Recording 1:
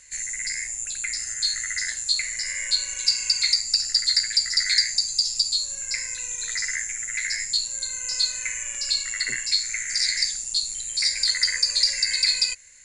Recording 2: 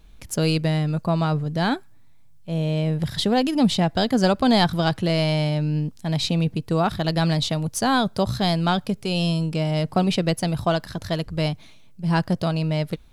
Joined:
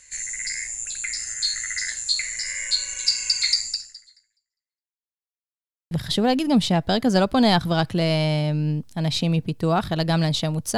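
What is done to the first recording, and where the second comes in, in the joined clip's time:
recording 1
3.66–5.04 fade out exponential
5.04–5.91 mute
5.91 switch to recording 2 from 2.99 s

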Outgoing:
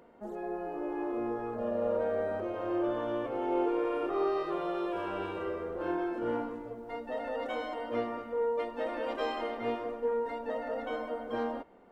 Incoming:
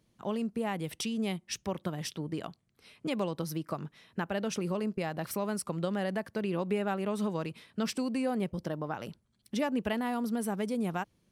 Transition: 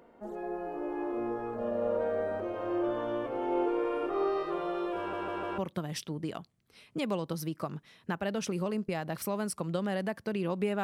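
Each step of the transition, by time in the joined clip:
outgoing
4.98 stutter in place 0.15 s, 4 plays
5.58 switch to incoming from 1.67 s

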